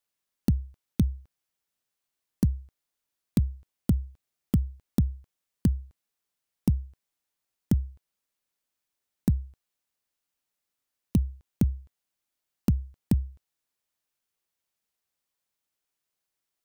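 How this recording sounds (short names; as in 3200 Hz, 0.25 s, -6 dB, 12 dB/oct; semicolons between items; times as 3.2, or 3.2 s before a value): noise floor -85 dBFS; spectral tilt -12.5 dB/oct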